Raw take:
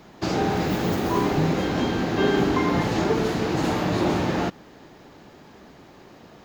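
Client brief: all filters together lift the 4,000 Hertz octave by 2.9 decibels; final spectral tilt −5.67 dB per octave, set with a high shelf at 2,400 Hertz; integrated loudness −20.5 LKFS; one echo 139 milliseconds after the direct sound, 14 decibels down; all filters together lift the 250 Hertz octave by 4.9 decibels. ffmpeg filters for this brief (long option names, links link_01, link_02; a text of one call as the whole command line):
ffmpeg -i in.wav -af "equalizer=frequency=250:width_type=o:gain=6.5,highshelf=frequency=2400:gain=-5,equalizer=frequency=4000:width_type=o:gain=8,aecho=1:1:139:0.2,volume=-0.5dB" out.wav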